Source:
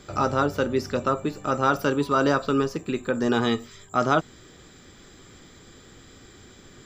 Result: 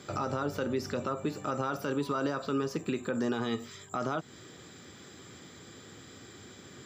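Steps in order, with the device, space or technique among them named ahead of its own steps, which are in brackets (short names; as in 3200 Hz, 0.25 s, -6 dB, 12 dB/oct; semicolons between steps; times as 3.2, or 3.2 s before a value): podcast mastering chain (HPF 89 Hz 24 dB/oct; de-esser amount 75%; compressor 4:1, threshold -24 dBFS, peak gain reduction 7.5 dB; limiter -21 dBFS, peak gain reduction 8 dB; MP3 96 kbps 44100 Hz)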